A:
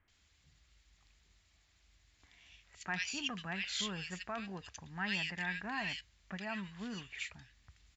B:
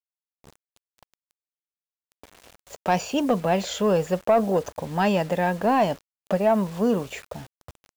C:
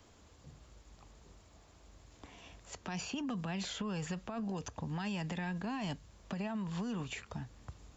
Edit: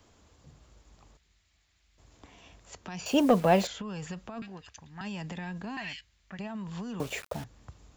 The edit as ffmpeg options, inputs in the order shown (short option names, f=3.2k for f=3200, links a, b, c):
-filter_complex "[0:a]asplit=3[a][b][c];[1:a]asplit=2[d][e];[2:a]asplit=6[f][g][h][i][j][k];[f]atrim=end=1.172[l];[a]atrim=start=1.168:end=1.982[m];[g]atrim=start=1.978:end=3.062[n];[d]atrim=start=3.058:end=3.672[o];[h]atrim=start=3.668:end=4.422[p];[b]atrim=start=4.418:end=5.012[q];[i]atrim=start=5.008:end=5.772[r];[c]atrim=start=5.768:end=6.392[s];[j]atrim=start=6.388:end=7.002[t];[e]atrim=start=6.998:end=7.442[u];[k]atrim=start=7.438[v];[l][m]acrossfade=d=0.004:c1=hsin:c2=hsin[w];[w][n]acrossfade=d=0.004:c1=hsin:c2=hsin[x];[x][o]acrossfade=d=0.004:c1=hsin:c2=hsin[y];[y][p]acrossfade=d=0.004:c1=hsin:c2=hsin[z];[z][q]acrossfade=d=0.004:c1=hsin:c2=hsin[aa];[aa][r]acrossfade=d=0.004:c1=hsin:c2=hsin[ab];[ab][s]acrossfade=d=0.004:c1=hsin:c2=hsin[ac];[ac][t]acrossfade=d=0.004:c1=hsin:c2=hsin[ad];[ad][u]acrossfade=d=0.004:c1=hsin:c2=hsin[ae];[ae][v]acrossfade=d=0.004:c1=hsin:c2=hsin"